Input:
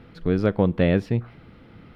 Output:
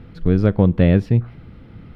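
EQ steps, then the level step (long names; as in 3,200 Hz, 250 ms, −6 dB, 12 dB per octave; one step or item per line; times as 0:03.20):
low-shelf EQ 190 Hz +12 dB
0.0 dB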